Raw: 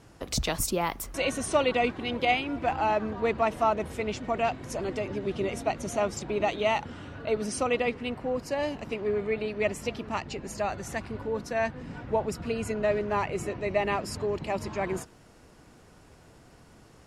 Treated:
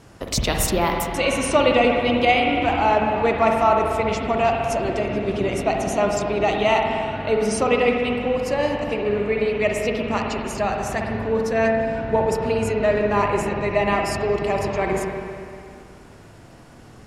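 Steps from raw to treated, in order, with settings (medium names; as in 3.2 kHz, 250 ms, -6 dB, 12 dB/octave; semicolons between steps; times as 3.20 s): spring tank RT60 2.4 s, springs 49/58 ms, chirp 40 ms, DRR 1 dB; trim +6 dB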